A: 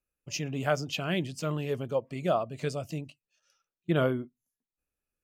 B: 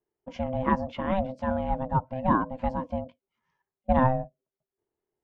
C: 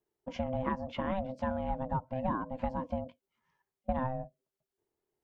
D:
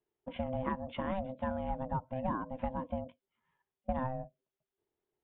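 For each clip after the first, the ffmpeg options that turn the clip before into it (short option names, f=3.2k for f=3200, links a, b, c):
-af "lowpass=1.2k,aeval=exprs='val(0)*sin(2*PI*390*n/s)':c=same,volume=7dB"
-af "acompressor=threshold=-29dB:ratio=6"
-af "aresample=8000,aresample=44100,volume=-2dB"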